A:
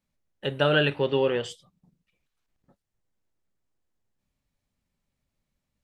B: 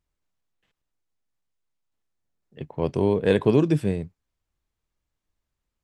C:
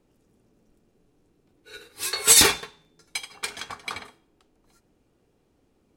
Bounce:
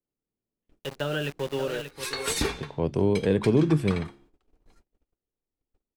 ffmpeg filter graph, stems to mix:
-filter_complex "[0:a]aeval=exprs='val(0)*gte(abs(val(0)),0.0335)':c=same,adelay=400,volume=-10.5dB,asplit=2[a][b];[b]volume=-10.5dB[c];[1:a]bandreject=f=69.44:t=h:w=4,bandreject=f=138.88:t=h:w=4,bandreject=f=208.32:t=h:w=4,bandreject=f=277.76:t=h:w=4,bandreject=f=347.2:t=h:w=4,volume=-5dB[d];[2:a]lowpass=f=3.2k:p=1,asubboost=boost=4.5:cutoff=52,volume=-4dB[e];[c]aecho=0:1:583:1[f];[a][d][e][f]amix=inputs=4:normalize=0,acontrast=34,agate=range=-28dB:threshold=-56dB:ratio=16:detection=peak,acrossover=split=380[g][h];[h]acompressor=threshold=-28dB:ratio=6[i];[g][i]amix=inputs=2:normalize=0"

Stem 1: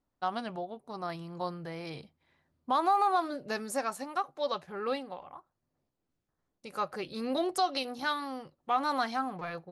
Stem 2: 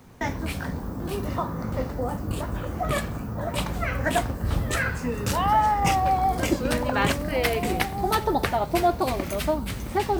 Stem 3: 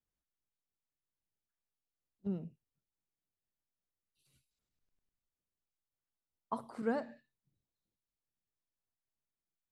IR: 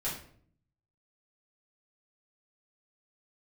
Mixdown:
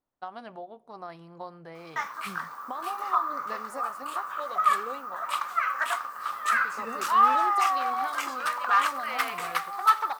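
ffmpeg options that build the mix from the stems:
-filter_complex "[0:a]equalizer=f=920:w=0.32:g=10,acompressor=threshold=-23dB:ratio=6,volume=-11.5dB,asplit=2[a][b];[b]volume=-23dB[c];[1:a]asoftclip=type=hard:threshold=-17.5dB,highpass=f=1.2k:t=q:w=9.1,adelay=1750,volume=-5.5dB[d];[2:a]volume=-7.5dB[e];[3:a]atrim=start_sample=2205[f];[c][f]afir=irnorm=-1:irlink=0[g];[a][d][e][g]amix=inputs=4:normalize=0"

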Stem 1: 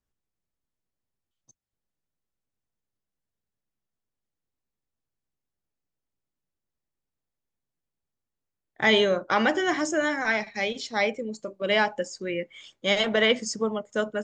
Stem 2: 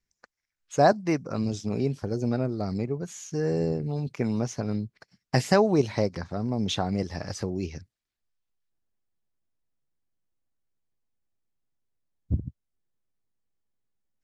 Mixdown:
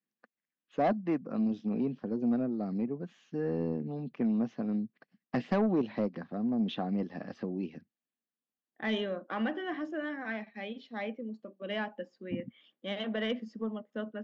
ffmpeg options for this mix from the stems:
-filter_complex "[0:a]volume=-7dB[a];[1:a]volume=-1.5dB[b];[a][b]amix=inputs=2:normalize=0,highpass=f=190:w=0.5412,highpass=f=190:w=1.3066,equalizer=f=230:t=q:w=4:g=5,equalizer=f=400:t=q:w=4:g=-6,equalizer=f=600:t=q:w=4:g=-4,equalizer=f=920:t=q:w=4:g=-9,equalizer=f=1.4k:t=q:w=4:g=-7,equalizer=f=2.2k:t=q:w=4:g=-10,lowpass=f=2.8k:w=0.5412,lowpass=f=2.8k:w=1.3066,asoftclip=type=tanh:threshold=-20.5dB"

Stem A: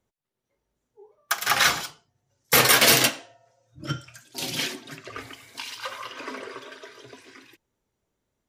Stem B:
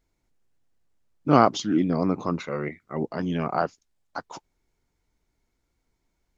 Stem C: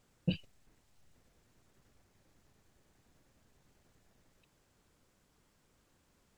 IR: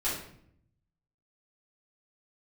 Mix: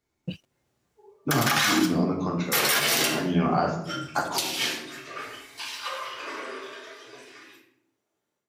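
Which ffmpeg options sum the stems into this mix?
-filter_complex "[0:a]highpass=f=440:p=1,volume=-0.5dB,asplit=2[a][b];[b]volume=-14dB[c];[1:a]acrossover=split=180|3000[d][e][f];[e]acompressor=threshold=-27dB:ratio=6[g];[d][g][f]amix=inputs=3:normalize=0,volume=-6.5dB,asplit=3[h][i][j];[i]volume=-3.5dB[k];[2:a]aeval=exprs='sgn(val(0))*max(abs(val(0))-0.00168,0)':c=same,volume=-2.5dB[l];[j]apad=whole_len=374093[m];[a][m]sidechaingate=range=-33dB:threshold=-48dB:ratio=16:detection=peak[n];[3:a]atrim=start_sample=2205[o];[c][k]amix=inputs=2:normalize=0[p];[p][o]afir=irnorm=-1:irlink=0[q];[n][h][l][q]amix=inputs=4:normalize=0,highpass=90,dynaudnorm=f=310:g=3:m=9.5dB,alimiter=limit=-12.5dB:level=0:latency=1:release=69"

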